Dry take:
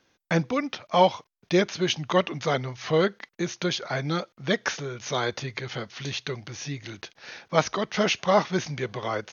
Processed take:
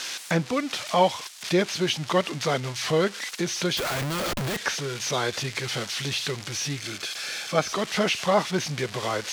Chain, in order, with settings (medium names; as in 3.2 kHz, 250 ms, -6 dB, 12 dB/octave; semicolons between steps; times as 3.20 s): zero-crossing glitches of -19 dBFS; low-pass 5.1 kHz 12 dB/octave; in parallel at -2 dB: compression, threshold -29 dBFS, peak gain reduction 15 dB; 3.77–4.57 s: on the sum: Schmitt trigger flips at -28 dBFS; 6.81–7.69 s: comb of notches 960 Hz; trim -2.5 dB